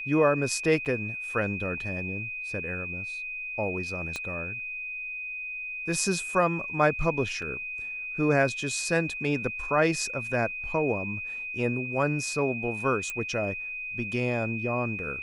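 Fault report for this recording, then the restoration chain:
whistle 2,500 Hz −33 dBFS
0:00.85–0:00.86: drop-out 8 ms
0:04.16: click −19 dBFS
0:07.42: drop-out 3.5 ms
0:13.10: click −18 dBFS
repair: click removal
notch filter 2,500 Hz, Q 30
repair the gap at 0:00.85, 8 ms
repair the gap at 0:07.42, 3.5 ms

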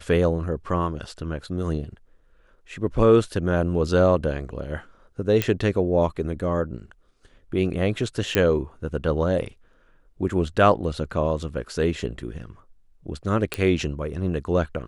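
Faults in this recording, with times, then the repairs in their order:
0:05.42: click −7 dBFS
0:08.35: click −6 dBFS
0:13.54: click −10 dBFS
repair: click removal

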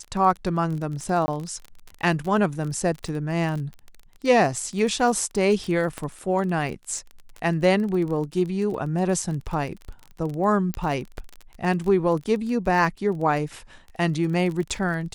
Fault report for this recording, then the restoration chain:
surface crackle 24 per second −30 dBFS
0:01.26–0:01.28: drop-out 20 ms
0:05.98: click −16 dBFS
0:10.74: click −13 dBFS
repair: click removal
repair the gap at 0:01.26, 20 ms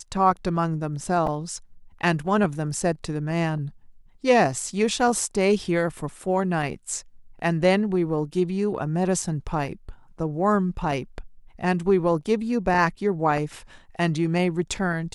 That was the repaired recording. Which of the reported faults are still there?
0:05.98: click

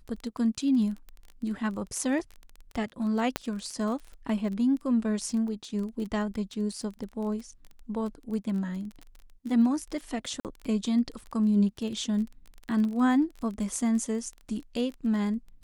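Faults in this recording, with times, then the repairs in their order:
surface crackle 23 per second −35 dBFS
0:03.36: click −11 dBFS
0:10.40–0:10.45: drop-out 48 ms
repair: click removal
repair the gap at 0:10.40, 48 ms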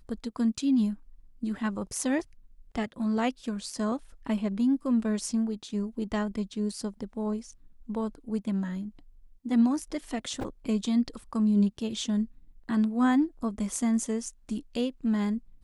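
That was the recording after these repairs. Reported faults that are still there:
none of them is left

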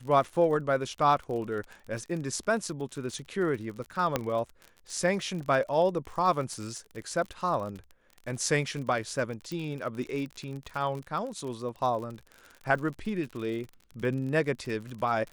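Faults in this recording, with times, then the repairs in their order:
surface crackle 49 per second −36 dBFS
0:04.16: click −11 dBFS
0:09.52: click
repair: click removal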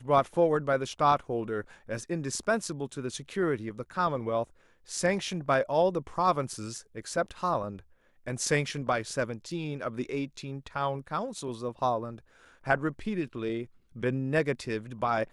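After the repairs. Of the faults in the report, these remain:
0:09.52: click

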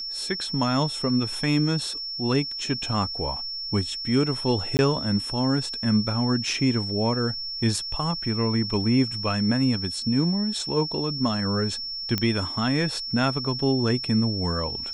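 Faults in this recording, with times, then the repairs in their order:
whistle 5,400 Hz −30 dBFS
0:04.77–0:04.79: drop-out 19 ms
0:12.18: click −10 dBFS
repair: click removal
notch filter 5,400 Hz, Q 30
repair the gap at 0:04.77, 19 ms

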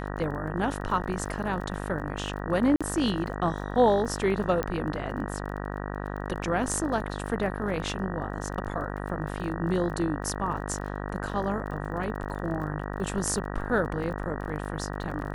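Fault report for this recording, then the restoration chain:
mains buzz 50 Hz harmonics 38 −34 dBFS
surface crackle 26 per second −37 dBFS
0:02.76–0:02.81: drop-out 46 ms
0:04.63: click −15 dBFS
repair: click removal
hum removal 50 Hz, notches 38
repair the gap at 0:02.76, 46 ms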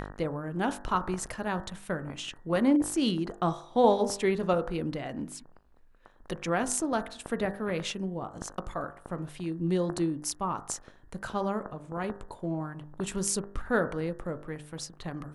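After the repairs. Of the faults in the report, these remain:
none of them is left

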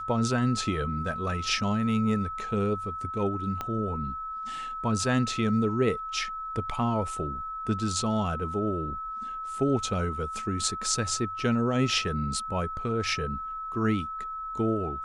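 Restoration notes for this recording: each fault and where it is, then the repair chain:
whistle 1,300 Hz −33 dBFS
0:03.61: click −18 dBFS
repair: click removal
notch filter 1,300 Hz, Q 30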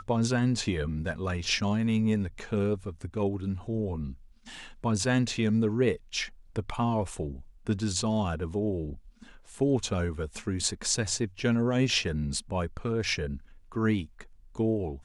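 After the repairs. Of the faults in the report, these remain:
0:03.61: click

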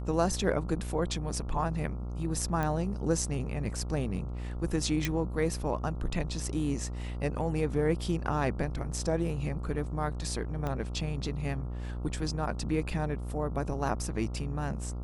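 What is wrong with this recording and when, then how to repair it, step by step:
mains buzz 60 Hz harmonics 23 −36 dBFS
0:02.63: click −18 dBFS
0:05.05: click
0:10.67: click −21 dBFS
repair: click removal
hum removal 60 Hz, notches 23

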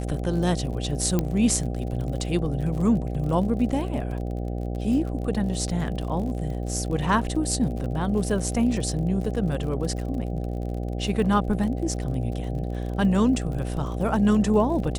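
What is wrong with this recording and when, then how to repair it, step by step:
mains buzz 60 Hz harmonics 13 −29 dBFS
surface crackle 44 per second −33 dBFS
0:01.19: click −10 dBFS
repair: click removal
hum removal 60 Hz, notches 13

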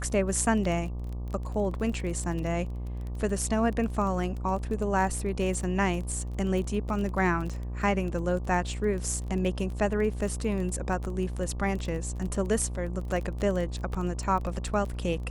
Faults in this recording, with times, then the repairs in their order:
mains buzz 60 Hz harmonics 20 −34 dBFS
surface crackle 22 per second −33 dBFS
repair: click removal
hum removal 60 Hz, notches 20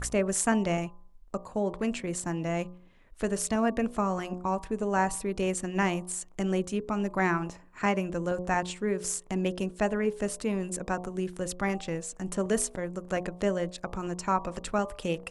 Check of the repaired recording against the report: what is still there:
none of them is left

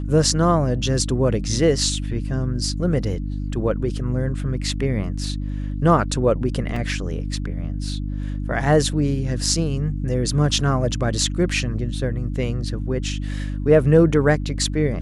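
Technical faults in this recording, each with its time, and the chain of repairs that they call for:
mains hum 50 Hz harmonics 6 −26 dBFS
0:06.76: drop-out 3.6 ms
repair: hum removal 50 Hz, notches 6
repair the gap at 0:06.76, 3.6 ms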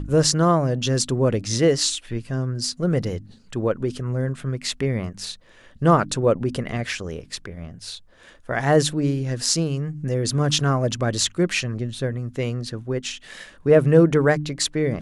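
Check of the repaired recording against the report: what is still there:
none of them is left

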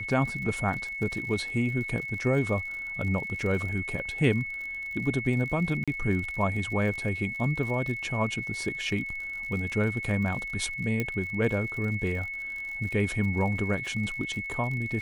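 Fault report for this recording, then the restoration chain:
surface crackle 58 per second −36 dBFS
whistle 2,200 Hz −33 dBFS
0:05.84–0:05.88: drop-out 36 ms
0:11.00: click −15 dBFS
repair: click removal
notch filter 2,200 Hz, Q 30
repair the gap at 0:05.84, 36 ms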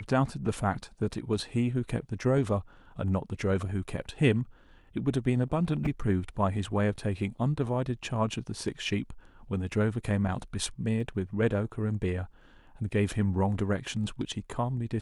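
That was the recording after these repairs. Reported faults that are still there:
0:11.00: click

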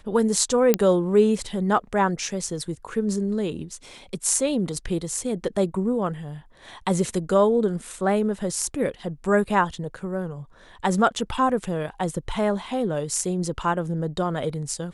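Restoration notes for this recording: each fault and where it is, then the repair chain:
0:00.74: click −4 dBFS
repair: click removal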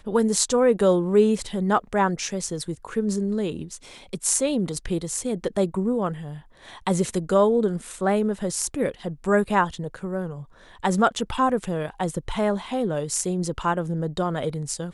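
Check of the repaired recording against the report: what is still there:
none of them is left

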